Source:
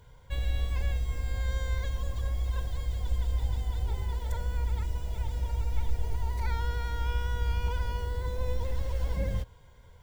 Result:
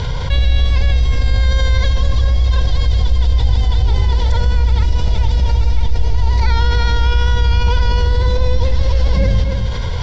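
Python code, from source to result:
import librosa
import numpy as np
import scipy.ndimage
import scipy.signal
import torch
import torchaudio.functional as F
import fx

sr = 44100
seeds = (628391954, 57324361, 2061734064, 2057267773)

p1 = scipy.signal.sosfilt(scipy.signal.butter(6, 5100.0, 'lowpass', fs=sr, output='sos'), x)
p2 = fx.bass_treble(p1, sr, bass_db=3, treble_db=14)
p3 = p2 + fx.echo_single(p2, sr, ms=269, db=-16.0, dry=0)
p4 = fx.env_flatten(p3, sr, amount_pct=70)
y = p4 * librosa.db_to_amplitude(8.5)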